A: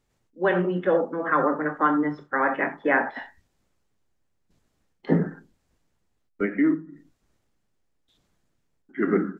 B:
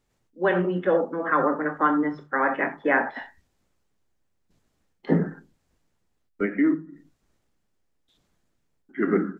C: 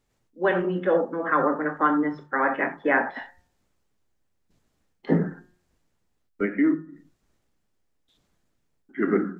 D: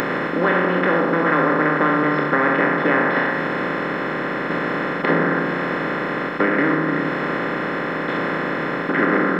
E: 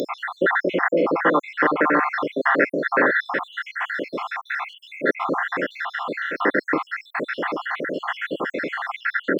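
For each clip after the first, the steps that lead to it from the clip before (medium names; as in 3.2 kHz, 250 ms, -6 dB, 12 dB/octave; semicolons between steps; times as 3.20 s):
hum notches 50/100/150 Hz
de-hum 179.5 Hz, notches 10
spectral levelling over time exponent 0.2; treble shelf 2.4 kHz +11.5 dB; compression 2:1, threshold -18 dBFS, peak gain reduction 6 dB
random holes in the spectrogram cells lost 70%; high-pass 300 Hz 12 dB/octave; trim +3 dB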